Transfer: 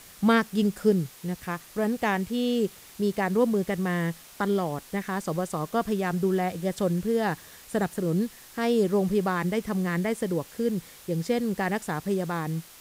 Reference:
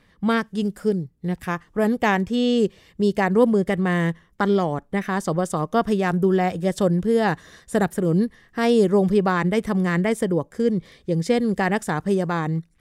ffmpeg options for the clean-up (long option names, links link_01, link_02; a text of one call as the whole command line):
ffmpeg -i in.wav -af "afwtdn=0.004,asetnsamples=nb_out_samples=441:pad=0,asendcmd='1.1 volume volume 6dB',volume=0dB" out.wav